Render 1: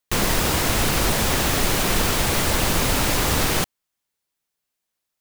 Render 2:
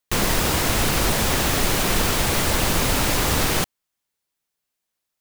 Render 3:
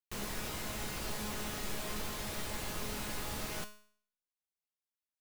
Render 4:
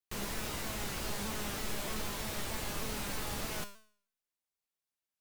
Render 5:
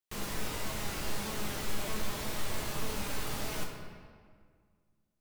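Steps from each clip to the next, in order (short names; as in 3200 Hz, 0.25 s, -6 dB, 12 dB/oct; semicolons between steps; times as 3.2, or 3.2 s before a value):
nothing audible
resonator 210 Hz, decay 0.52 s, harmonics all, mix 80%; gain -8 dB
shaped vibrato saw down 3.2 Hz, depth 100 cents; gain +1.5 dB
reverb RT60 1.9 s, pre-delay 6 ms, DRR 2.5 dB; gain -1 dB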